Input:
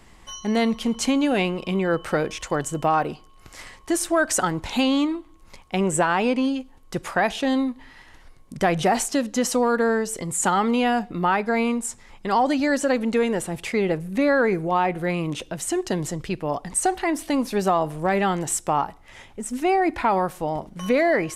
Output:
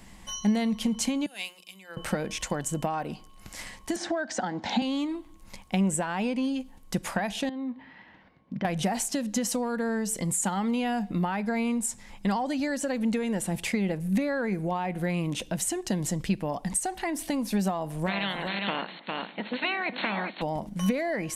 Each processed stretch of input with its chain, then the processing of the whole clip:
1.26–1.97 differentiator + notches 60/120/180/240/300/360/420 Hz + three-band expander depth 100%
3.96–4.82 speaker cabinet 150–5500 Hz, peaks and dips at 150 Hz -7 dB, 230 Hz +7 dB, 770 Hz +8 dB, 1100 Hz -4 dB, 1700 Hz +4 dB, 2600 Hz -6 dB + three-band squash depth 40%
7.49–8.65 compressor 5:1, threshold -29 dBFS + BPF 140–3400 Hz + air absorption 210 m
18.06–20.41 spectral limiter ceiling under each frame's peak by 26 dB + brick-wall FIR band-pass 160–4400 Hz + echo 0.404 s -8.5 dB
whole clip: high shelf 8200 Hz +6.5 dB; compressor, threshold -26 dBFS; thirty-one-band EQ 200 Hz +9 dB, 400 Hz -6 dB, 1250 Hz -6 dB

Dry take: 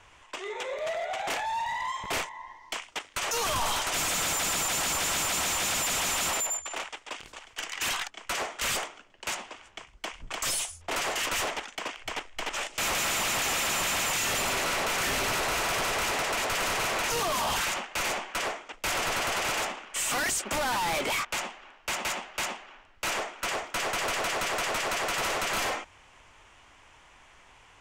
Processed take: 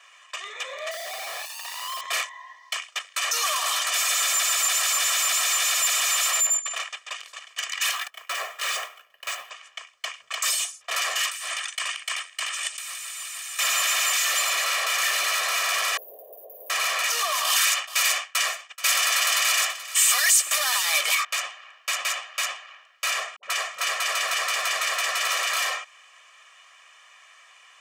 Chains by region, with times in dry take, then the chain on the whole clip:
0.91–2.01 LPF 1000 Hz + Schmitt trigger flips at -52 dBFS
7.91–9.5 careless resampling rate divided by 3×, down none, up hold + tilt -2 dB/oct
11.27–13.59 HPF 1500 Hz 6 dB/oct + bell 8800 Hz +12 dB 0.21 oct + negative-ratio compressor -38 dBFS
15.97–16.7 inverse Chebyshev band-stop 1200–8300 Hz, stop band 50 dB + resonant low shelf 210 Hz -8 dB, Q 1.5
17.44–21.15 expander -34 dBFS + tilt +2 dB/oct + echo 0.43 s -15 dB
23.36–25.43 dispersion highs, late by 70 ms, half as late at 410 Hz + warbling echo 0.278 s, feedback 50%, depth 175 cents, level -11.5 dB
whole clip: HPF 1200 Hz 12 dB/oct; comb 1.7 ms, depth 99%; gain +3 dB

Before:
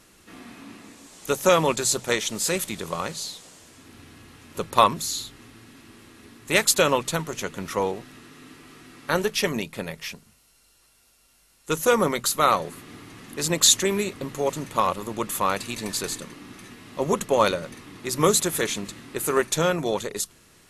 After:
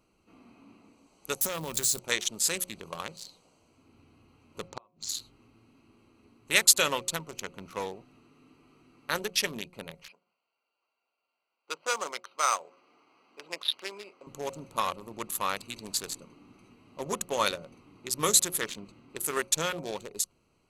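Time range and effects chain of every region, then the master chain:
1.41–1.99 switching spikes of -22 dBFS + low shelf 180 Hz +11 dB + compressor, threshold -21 dBFS
4.68–5.09 flipped gate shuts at -13 dBFS, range -35 dB + brick-wall FIR low-pass 7600 Hz
10.08–14.27 notch 1800 Hz, Q 15 + careless resampling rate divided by 6×, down filtered, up hold + BPF 600–6700 Hz
18.6–19.1 high shelf 6000 Hz -5.5 dB + Doppler distortion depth 0.16 ms
whole clip: Wiener smoothing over 25 samples; tilt shelf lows -7 dB, about 1300 Hz; de-hum 180.8 Hz, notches 4; gain -5 dB

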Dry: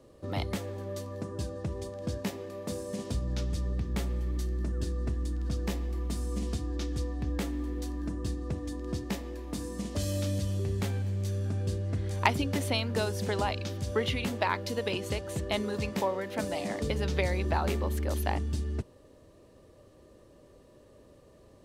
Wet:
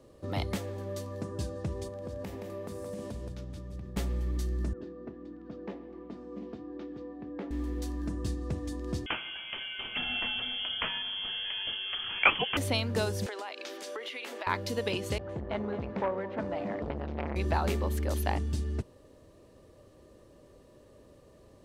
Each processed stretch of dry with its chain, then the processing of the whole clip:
1.88–3.97 bell 5600 Hz -6 dB 2.2 oct + compressor 10:1, threshold -36 dBFS + echo 0.172 s -5 dB
4.73–7.51 Chebyshev high-pass 310 Hz + tape spacing loss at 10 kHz 45 dB
9.06–12.57 bell 270 Hz -10.5 dB 2.6 oct + overdrive pedal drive 18 dB, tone 2500 Hz, clips at -7.5 dBFS + inverted band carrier 3300 Hz
13.26–14.47 steep high-pass 310 Hz + bell 1900 Hz +6 dB 2 oct + compressor, threshold -36 dBFS
15.18–17.36 LPF 1800 Hz + echo 0.218 s -16 dB + core saturation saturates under 830 Hz
whole clip: dry

